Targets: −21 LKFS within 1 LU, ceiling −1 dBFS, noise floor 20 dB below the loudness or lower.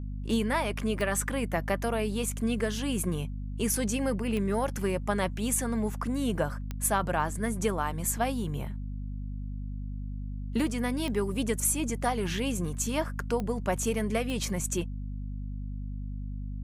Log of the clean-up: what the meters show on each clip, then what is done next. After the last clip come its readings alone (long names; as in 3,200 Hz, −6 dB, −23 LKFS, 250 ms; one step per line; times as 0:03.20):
number of clicks 6; mains hum 50 Hz; hum harmonics up to 250 Hz; level of the hum −33 dBFS; integrated loudness −30.5 LKFS; sample peak −13.5 dBFS; target loudness −21.0 LKFS
→ click removal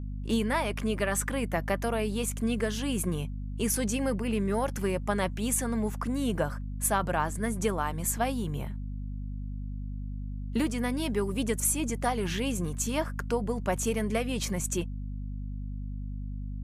number of clicks 0; mains hum 50 Hz; hum harmonics up to 250 Hz; level of the hum −33 dBFS
→ hum removal 50 Hz, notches 5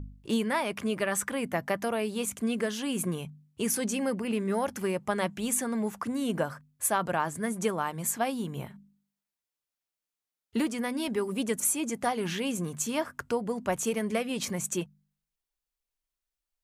mains hum none found; integrated loudness −30.5 LKFS; sample peak −14.5 dBFS; target loudness −21.0 LKFS
→ level +9.5 dB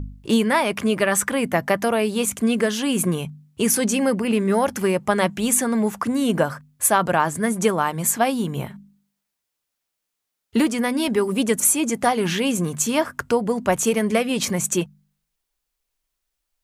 integrated loudness −21.0 LKFS; sample peak −5.0 dBFS; background noise floor −81 dBFS